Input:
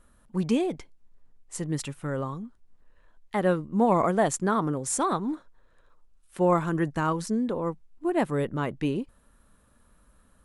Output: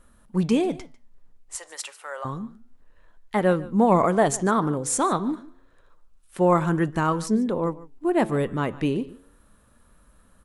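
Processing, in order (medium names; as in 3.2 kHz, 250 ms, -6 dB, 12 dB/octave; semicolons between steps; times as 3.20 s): 1.55–2.25 s: inverse Chebyshev high-pass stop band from 240 Hz, stop band 50 dB; flange 0.28 Hz, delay 3.7 ms, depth 8.6 ms, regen +90%; on a send: delay 147 ms -19.5 dB; on the sum: trim +8 dB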